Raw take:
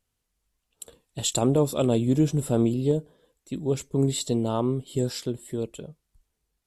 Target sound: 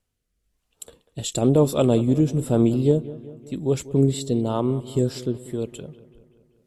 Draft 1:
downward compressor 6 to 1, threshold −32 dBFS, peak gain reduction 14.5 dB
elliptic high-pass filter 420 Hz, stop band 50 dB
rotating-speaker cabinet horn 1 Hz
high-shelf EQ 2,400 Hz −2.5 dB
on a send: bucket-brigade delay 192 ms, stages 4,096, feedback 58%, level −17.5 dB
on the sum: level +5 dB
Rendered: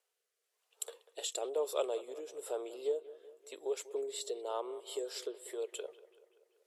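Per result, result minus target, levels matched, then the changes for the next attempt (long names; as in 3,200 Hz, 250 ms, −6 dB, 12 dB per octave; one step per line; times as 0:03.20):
downward compressor: peak gain reduction +14.5 dB; 500 Hz band +4.5 dB
remove: downward compressor 6 to 1, threshold −32 dBFS, peak gain reduction 14.5 dB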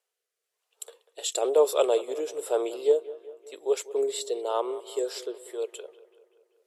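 500 Hz band +4.5 dB
remove: elliptic high-pass filter 420 Hz, stop band 50 dB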